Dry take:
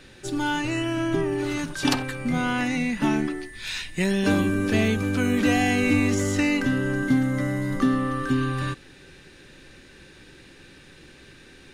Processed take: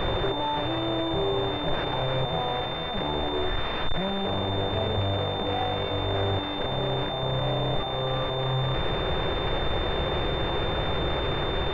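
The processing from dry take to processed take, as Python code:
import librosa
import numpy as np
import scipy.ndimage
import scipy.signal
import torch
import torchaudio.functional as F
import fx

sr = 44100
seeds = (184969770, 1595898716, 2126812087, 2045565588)

y = np.sign(x) * np.sqrt(np.mean(np.square(x)))
y = fx.fixed_phaser(y, sr, hz=610.0, stages=4)
y = fx.pwm(y, sr, carrier_hz=3600.0)
y = y * 10.0 ** (4.0 / 20.0)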